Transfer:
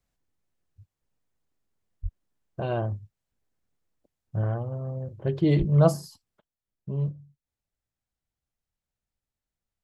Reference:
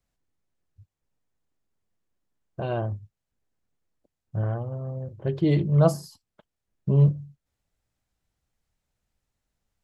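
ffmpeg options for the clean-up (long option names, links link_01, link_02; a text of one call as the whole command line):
ffmpeg -i in.wav -filter_complex "[0:a]asplit=3[link_01][link_02][link_03];[link_01]afade=type=out:start_time=2.02:duration=0.02[link_04];[link_02]highpass=frequency=140:width=0.5412,highpass=frequency=140:width=1.3066,afade=type=in:start_time=2.02:duration=0.02,afade=type=out:start_time=2.14:duration=0.02[link_05];[link_03]afade=type=in:start_time=2.14:duration=0.02[link_06];[link_04][link_05][link_06]amix=inputs=3:normalize=0,asplit=3[link_07][link_08][link_09];[link_07]afade=type=out:start_time=5.58:duration=0.02[link_10];[link_08]highpass=frequency=140:width=0.5412,highpass=frequency=140:width=1.3066,afade=type=in:start_time=5.58:duration=0.02,afade=type=out:start_time=5.7:duration=0.02[link_11];[link_09]afade=type=in:start_time=5.7:duration=0.02[link_12];[link_10][link_11][link_12]amix=inputs=3:normalize=0,asetnsamples=nb_out_samples=441:pad=0,asendcmd='6.39 volume volume 10dB',volume=0dB" out.wav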